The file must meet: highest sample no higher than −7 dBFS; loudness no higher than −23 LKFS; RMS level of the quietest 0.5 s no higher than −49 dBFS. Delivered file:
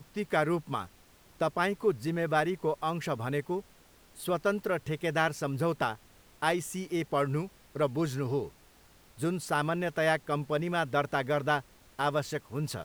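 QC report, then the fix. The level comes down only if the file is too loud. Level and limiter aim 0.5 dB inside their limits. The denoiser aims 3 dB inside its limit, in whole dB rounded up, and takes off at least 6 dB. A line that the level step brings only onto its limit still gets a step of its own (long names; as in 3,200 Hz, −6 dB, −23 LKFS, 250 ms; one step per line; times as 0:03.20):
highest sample −11.5 dBFS: in spec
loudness −31.0 LKFS: in spec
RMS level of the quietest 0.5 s −59 dBFS: in spec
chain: no processing needed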